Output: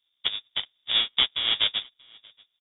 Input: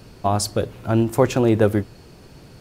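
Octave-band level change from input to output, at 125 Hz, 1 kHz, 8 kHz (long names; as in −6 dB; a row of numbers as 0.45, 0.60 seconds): below −30 dB, −15.5 dB, below −40 dB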